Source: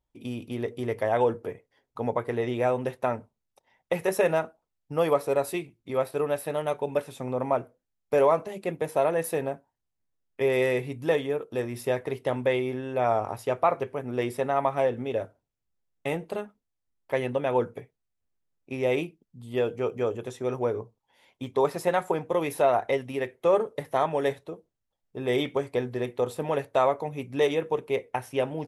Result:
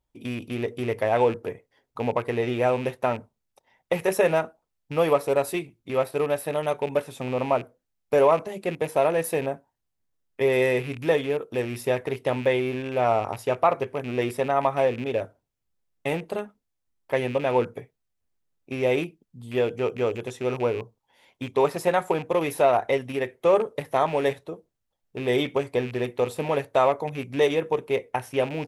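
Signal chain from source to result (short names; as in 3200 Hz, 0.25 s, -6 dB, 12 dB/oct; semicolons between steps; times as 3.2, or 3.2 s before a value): rattling part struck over -36 dBFS, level -31 dBFS; gain +2.5 dB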